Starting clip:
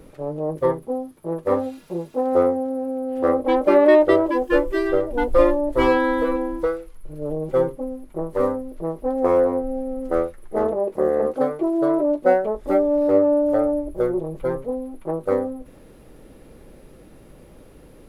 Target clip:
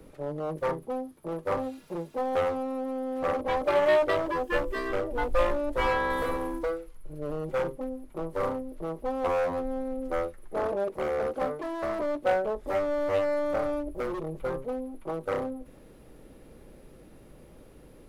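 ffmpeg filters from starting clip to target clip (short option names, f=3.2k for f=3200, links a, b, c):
-filter_complex "[0:a]asettb=1/sr,asplit=3[a][b][c];[a]atrim=end=6.104[d];[b]atrim=start=6.1:end=6.59,asetpts=PTS-STARTPTS,afade=t=in:d=0.004:c=qsin,afade=t=out:st=0.486:d=0.004:c=qsin,highshelf=f=4.3k:g=11.5[e];[c]atrim=start=6.586[f];[d][e]acrossfade=d=0.004:c1=hsin:c2=qsin[g];[g][f]acrossfade=d=0.004:c1=qsin:c2=hsin,acrossover=split=130|490|1500[h][i][j][k];[i]aeval=exprs='0.0447*(abs(mod(val(0)/0.0447+3,4)-2)-1)':c=same[l];[h][l][j][k]amix=inputs=4:normalize=0,volume=-5dB"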